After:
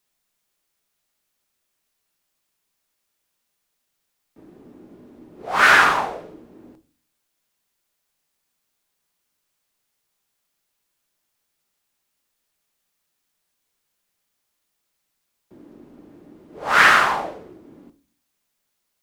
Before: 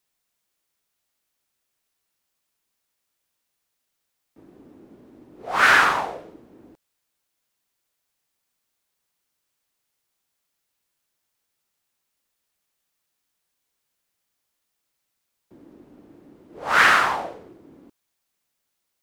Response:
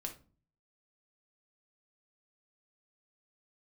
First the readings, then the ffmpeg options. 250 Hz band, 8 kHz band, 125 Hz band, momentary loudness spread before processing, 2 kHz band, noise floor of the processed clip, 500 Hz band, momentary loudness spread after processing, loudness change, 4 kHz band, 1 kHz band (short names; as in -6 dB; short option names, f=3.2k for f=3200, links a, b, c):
+2.5 dB, +2.5 dB, +2.5 dB, 19 LU, +2.5 dB, -76 dBFS, +2.5 dB, 19 LU, +2.0 dB, +2.5 dB, +2.5 dB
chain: -filter_complex "[0:a]asplit=2[a][b];[1:a]atrim=start_sample=2205[c];[b][c]afir=irnorm=-1:irlink=0,volume=1.5dB[d];[a][d]amix=inputs=2:normalize=0,volume=-3dB"